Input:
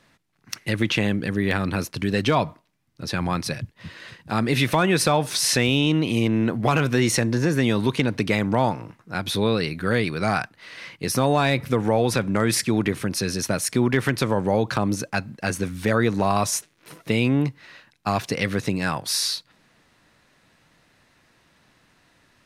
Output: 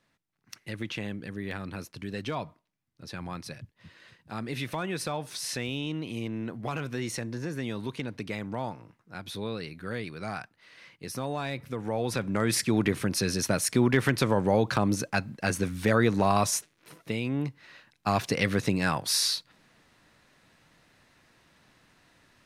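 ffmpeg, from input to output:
-af "volume=6.5dB,afade=t=in:st=11.75:d=1.16:silence=0.298538,afade=t=out:st=16.41:d=0.82:silence=0.375837,afade=t=in:st=17.23:d=1.01:silence=0.354813"

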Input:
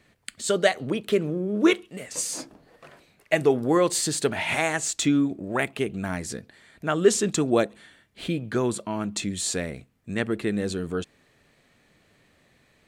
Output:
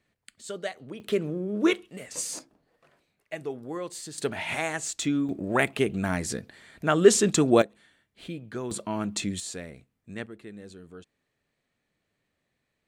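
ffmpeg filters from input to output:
-af "asetnsamples=n=441:p=0,asendcmd='1 volume volume -3.5dB;2.39 volume volume -14dB;4.18 volume volume -5dB;5.29 volume volume 2dB;7.62 volume volume -9.5dB;8.71 volume volume -1dB;9.4 volume volume -9.5dB;10.26 volume volume -17dB',volume=-13dB"

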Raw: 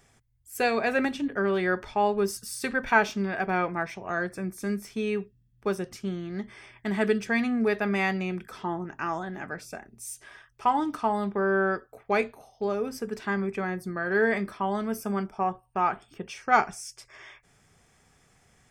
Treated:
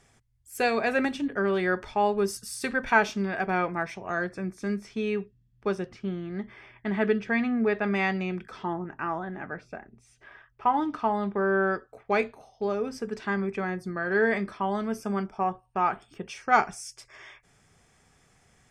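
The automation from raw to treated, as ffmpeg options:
-af "asetnsamples=n=441:p=0,asendcmd='4.24 lowpass f 5400;5.86 lowpass f 3000;7.84 lowpass f 5200;8.73 lowpass f 2300;10.74 lowpass f 4000;11.64 lowpass f 7100;15.93 lowpass f 12000',lowpass=12k"

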